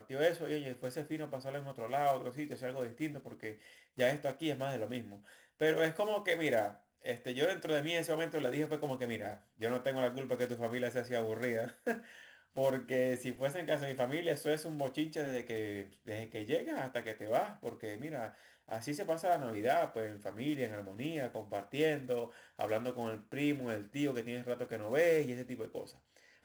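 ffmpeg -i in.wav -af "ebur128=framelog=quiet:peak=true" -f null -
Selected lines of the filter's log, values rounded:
Integrated loudness:
  I:         -36.9 LUFS
  Threshold: -47.1 LUFS
Loudness range:
  LRA:         3.8 LU
  Threshold: -57.1 LUFS
  LRA low:   -39.1 LUFS
  LRA high:  -35.3 LUFS
True peak:
  Peak:      -18.1 dBFS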